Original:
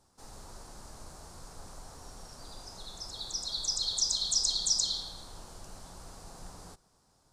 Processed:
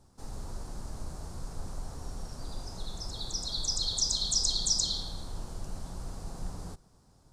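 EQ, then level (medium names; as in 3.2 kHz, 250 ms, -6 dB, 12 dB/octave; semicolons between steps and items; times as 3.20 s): bass shelf 370 Hz +11.5 dB; 0.0 dB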